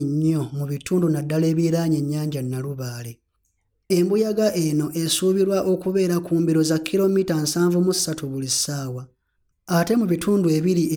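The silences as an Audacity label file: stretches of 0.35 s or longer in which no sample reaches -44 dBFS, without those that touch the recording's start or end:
3.140000	3.900000	silence
9.060000	9.680000	silence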